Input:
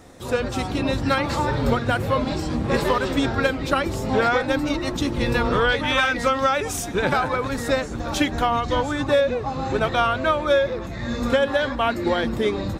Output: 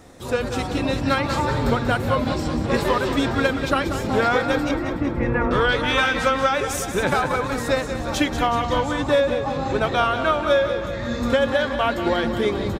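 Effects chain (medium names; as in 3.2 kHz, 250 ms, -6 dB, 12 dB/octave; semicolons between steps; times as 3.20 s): 4.71–5.51 s: steep low-pass 2.2 kHz; on a send: feedback delay 186 ms, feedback 58%, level -9.5 dB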